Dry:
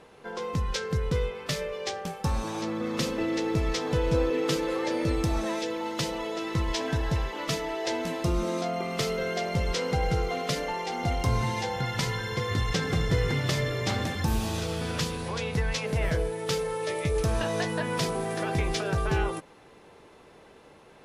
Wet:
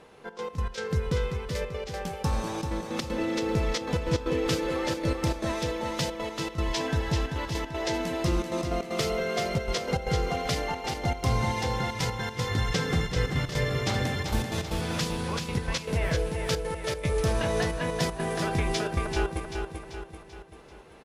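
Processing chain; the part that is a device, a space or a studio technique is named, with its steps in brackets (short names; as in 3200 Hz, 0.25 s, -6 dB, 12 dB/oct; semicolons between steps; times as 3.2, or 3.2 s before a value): trance gate with a delay (step gate "xxx.x.x.xxxx" 155 bpm -12 dB; feedback echo 0.388 s, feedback 49%, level -6 dB)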